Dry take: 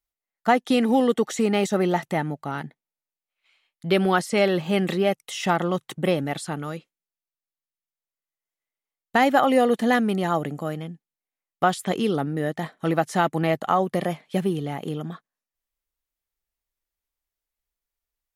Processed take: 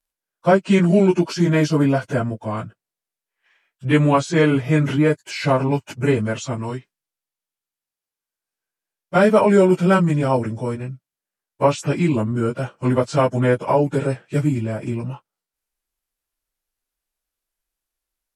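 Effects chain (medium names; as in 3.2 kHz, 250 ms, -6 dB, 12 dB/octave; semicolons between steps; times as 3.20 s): frequency-domain pitch shifter -4.5 st; trim +6 dB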